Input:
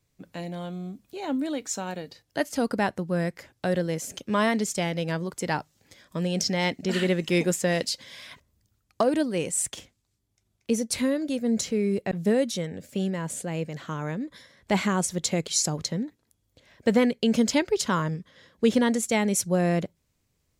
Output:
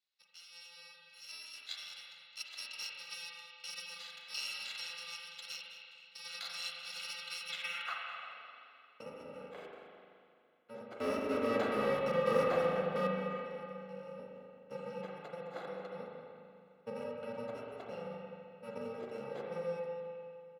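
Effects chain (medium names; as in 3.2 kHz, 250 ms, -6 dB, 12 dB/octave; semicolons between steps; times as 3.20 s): bit-reversed sample order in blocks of 128 samples; band-pass sweep 4.2 kHz -> 400 Hz, 7.41–8.45 s; 11.00–13.07 s: waveshaping leveller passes 5; three-band isolator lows -15 dB, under 260 Hz, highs -14 dB, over 4.2 kHz; delay 211 ms -14.5 dB; spring tank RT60 2.5 s, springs 37/42 ms, chirp 50 ms, DRR -2 dB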